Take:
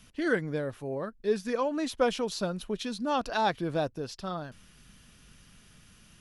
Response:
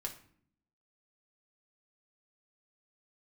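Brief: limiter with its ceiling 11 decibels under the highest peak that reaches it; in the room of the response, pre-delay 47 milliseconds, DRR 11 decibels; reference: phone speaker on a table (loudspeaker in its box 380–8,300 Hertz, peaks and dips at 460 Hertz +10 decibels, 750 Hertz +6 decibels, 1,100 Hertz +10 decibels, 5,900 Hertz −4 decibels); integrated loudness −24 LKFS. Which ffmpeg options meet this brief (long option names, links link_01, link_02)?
-filter_complex "[0:a]alimiter=limit=-24dB:level=0:latency=1,asplit=2[link_01][link_02];[1:a]atrim=start_sample=2205,adelay=47[link_03];[link_02][link_03]afir=irnorm=-1:irlink=0,volume=-10dB[link_04];[link_01][link_04]amix=inputs=2:normalize=0,highpass=frequency=380:width=0.5412,highpass=frequency=380:width=1.3066,equalizer=frequency=460:width_type=q:width=4:gain=10,equalizer=frequency=750:width_type=q:width=4:gain=6,equalizer=frequency=1100:width_type=q:width=4:gain=10,equalizer=frequency=5900:width_type=q:width=4:gain=-4,lowpass=frequency=8300:width=0.5412,lowpass=frequency=8300:width=1.3066,volume=6dB"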